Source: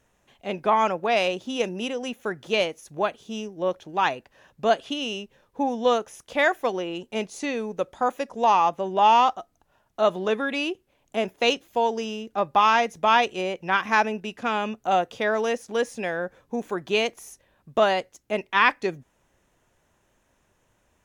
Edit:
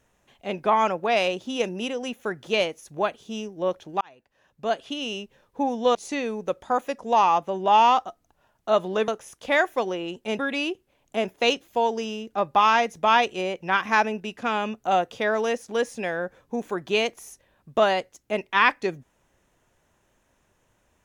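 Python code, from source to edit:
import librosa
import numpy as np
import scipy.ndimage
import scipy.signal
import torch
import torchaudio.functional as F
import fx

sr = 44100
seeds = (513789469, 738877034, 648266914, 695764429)

y = fx.edit(x, sr, fx.fade_in_span(start_s=4.01, length_s=1.19),
    fx.move(start_s=5.95, length_s=1.31, to_s=10.39), tone=tone)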